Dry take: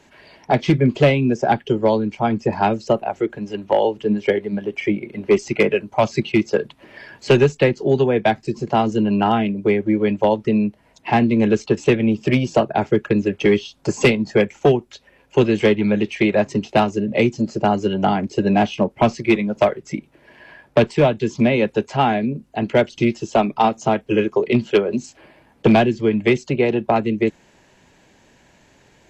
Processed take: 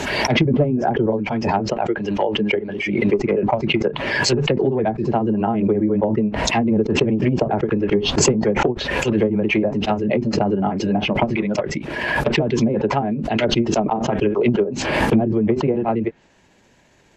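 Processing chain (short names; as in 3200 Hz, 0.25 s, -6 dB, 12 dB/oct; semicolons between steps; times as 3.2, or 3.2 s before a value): granular stretch 0.59×, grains 0.136 s; treble ducked by the level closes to 560 Hz, closed at -12.5 dBFS; backwards sustainer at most 32 dB/s; gain -1 dB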